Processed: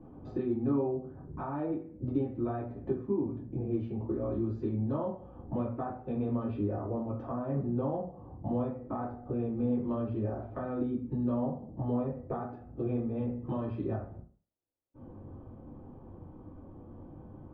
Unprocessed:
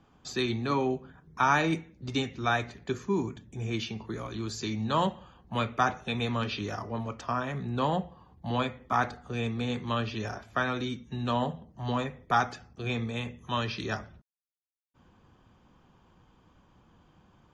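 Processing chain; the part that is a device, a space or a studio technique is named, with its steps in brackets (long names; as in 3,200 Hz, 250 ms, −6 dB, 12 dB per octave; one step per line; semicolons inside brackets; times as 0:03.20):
television next door (downward compressor 4 to 1, threshold −44 dBFS, peak gain reduction 20.5 dB; low-pass filter 510 Hz 12 dB per octave; convolution reverb RT60 0.40 s, pre-delay 3 ms, DRR −6 dB)
level +7.5 dB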